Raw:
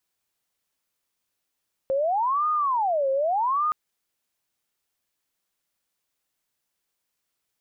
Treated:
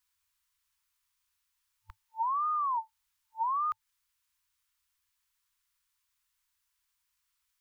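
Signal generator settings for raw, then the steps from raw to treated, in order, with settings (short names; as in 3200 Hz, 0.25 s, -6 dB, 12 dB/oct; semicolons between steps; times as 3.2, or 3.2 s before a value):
siren wail 535–1230 Hz 0.83/s sine -20.5 dBFS 1.82 s
FFT band-reject 100–890 Hz; low shelf 82 Hz +6.5 dB; compressor, threshold -29 dBFS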